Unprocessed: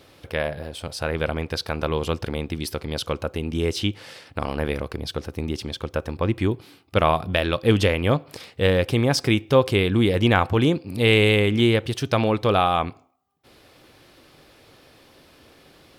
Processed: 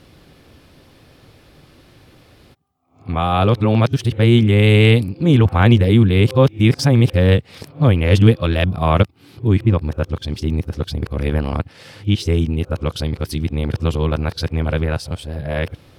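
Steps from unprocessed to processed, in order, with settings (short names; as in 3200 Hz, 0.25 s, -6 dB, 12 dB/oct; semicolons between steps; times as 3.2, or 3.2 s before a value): whole clip reversed; tone controls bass +10 dB, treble -1 dB; gain +1 dB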